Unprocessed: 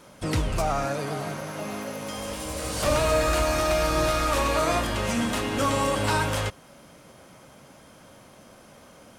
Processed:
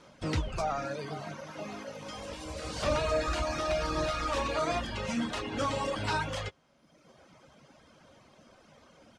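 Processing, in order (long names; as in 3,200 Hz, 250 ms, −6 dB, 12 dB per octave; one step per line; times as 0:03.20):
reverb reduction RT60 1.2 s
Chebyshev low-pass filter 5,200 Hz, order 2
double-tracking delay 13 ms −14 dB
level −4 dB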